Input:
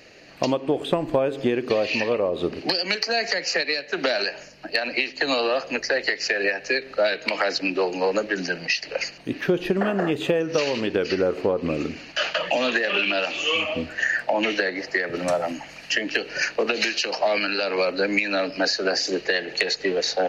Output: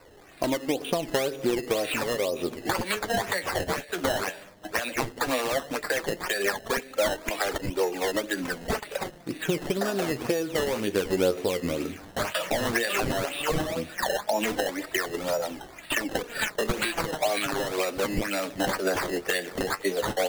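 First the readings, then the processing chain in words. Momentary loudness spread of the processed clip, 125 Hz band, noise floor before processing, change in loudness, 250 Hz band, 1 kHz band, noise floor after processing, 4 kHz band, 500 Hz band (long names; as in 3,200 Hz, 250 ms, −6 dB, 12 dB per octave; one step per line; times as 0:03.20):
5 LU, −0.5 dB, −44 dBFS, −4.5 dB, −3.5 dB, −1.5 dB, −48 dBFS, −7.0 dB, −4.0 dB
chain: sample-and-hold swept by an LFO 13×, swing 100% 2 Hz
flanger 0.13 Hz, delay 1.9 ms, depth 9.7 ms, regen +46%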